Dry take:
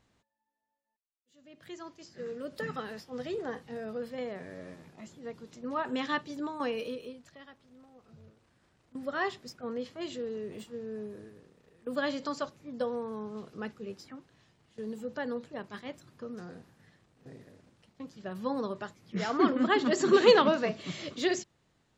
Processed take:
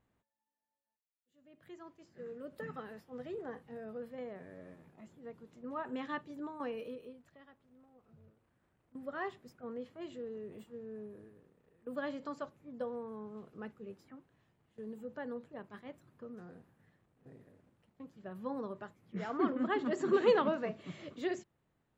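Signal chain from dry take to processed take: bell 5200 Hz -13.5 dB 1.5 oct; gain -6.5 dB

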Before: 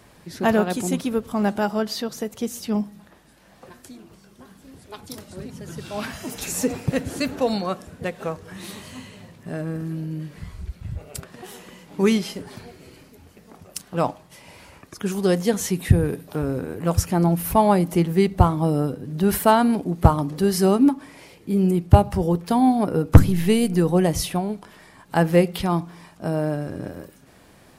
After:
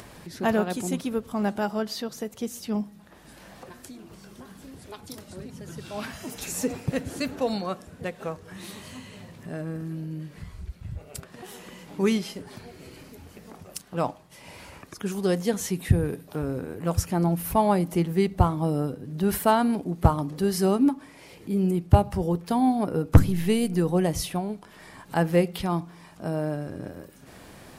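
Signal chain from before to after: upward compressor, threshold -32 dBFS; gain -4.5 dB

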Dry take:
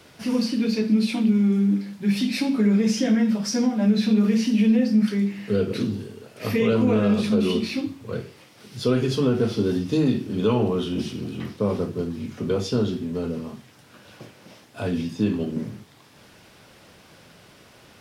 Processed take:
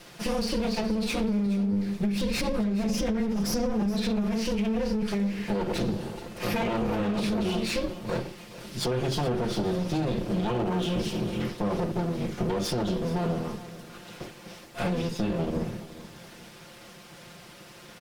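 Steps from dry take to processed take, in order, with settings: minimum comb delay 5.7 ms; 1.46–3.9 low shelf 430 Hz +7 dB; limiter -20 dBFS, peak gain reduction 14.5 dB; compressor, threshold -28 dBFS, peak gain reduction 5.5 dB; feedback echo 0.424 s, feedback 38%, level -16 dB; gain +4 dB

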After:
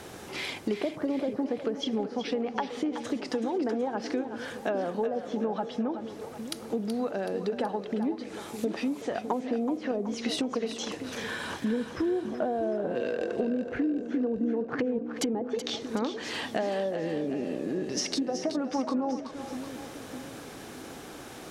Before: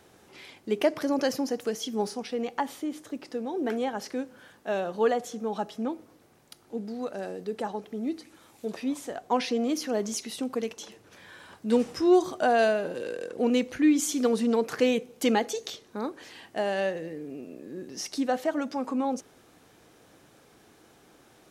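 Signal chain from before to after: treble ducked by the level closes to 520 Hz, closed at -22 dBFS; in parallel at +2 dB: limiter -21 dBFS, peak gain reduction 8 dB; on the sum: compressor 6:1, threshold -34 dBFS, peak gain reduction 19 dB; split-band echo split 480 Hz, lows 0.607 s, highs 0.376 s, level -9.5 dB; gain +6 dB

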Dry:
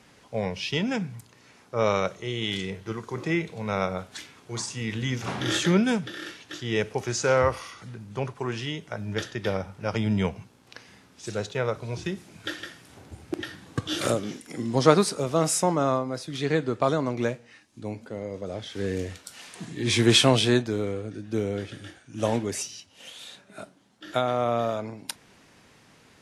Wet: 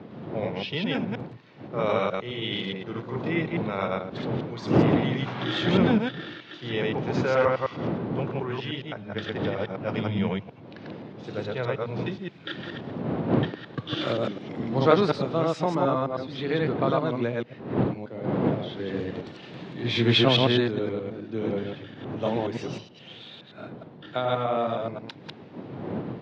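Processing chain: reverse delay 0.105 s, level 0 dB; wind noise 320 Hz -28 dBFS; elliptic band-pass 120–3800 Hz, stop band 60 dB; gain -3 dB

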